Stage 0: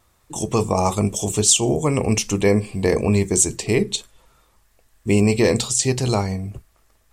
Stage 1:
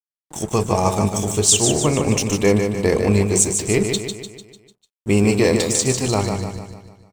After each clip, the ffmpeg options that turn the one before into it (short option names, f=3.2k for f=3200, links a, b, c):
-filter_complex "[0:a]aeval=exprs='sgn(val(0))*max(abs(val(0))-0.0158,0)':c=same,asplit=2[a][b];[b]aecho=0:1:149|298|447|596|745|894:0.501|0.251|0.125|0.0626|0.0313|0.0157[c];[a][c]amix=inputs=2:normalize=0,volume=1dB"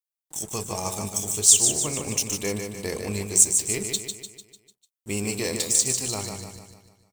-af "crystalizer=i=4.5:c=0,volume=-14dB"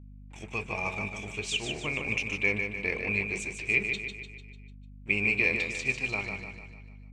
-af "lowpass=f=2.4k:t=q:w=12,aeval=exprs='val(0)+0.00891*(sin(2*PI*50*n/s)+sin(2*PI*2*50*n/s)/2+sin(2*PI*3*50*n/s)/3+sin(2*PI*4*50*n/s)/4+sin(2*PI*5*50*n/s)/5)':c=same,volume=-5.5dB"